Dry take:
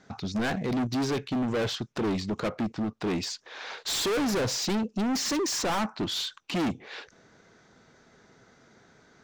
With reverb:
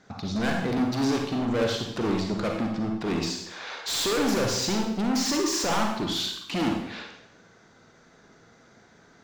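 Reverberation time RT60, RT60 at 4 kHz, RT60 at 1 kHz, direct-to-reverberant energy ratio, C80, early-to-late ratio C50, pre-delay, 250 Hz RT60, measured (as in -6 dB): 0.80 s, 0.75 s, 0.80 s, 1.0 dB, 6.5 dB, 3.0 dB, 37 ms, 0.80 s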